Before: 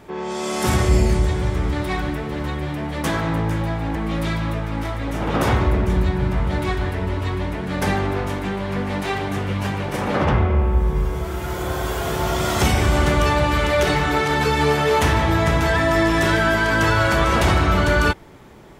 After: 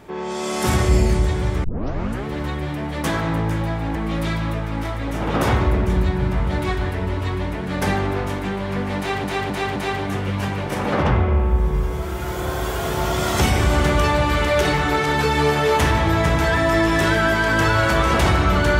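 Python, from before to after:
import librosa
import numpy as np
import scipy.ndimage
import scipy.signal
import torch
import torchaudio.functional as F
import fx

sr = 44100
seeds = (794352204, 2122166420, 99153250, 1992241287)

y = fx.edit(x, sr, fx.tape_start(start_s=1.64, length_s=0.62),
    fx.repeat(start_s=8.98, length_s=0.26, count=4), tone=tone)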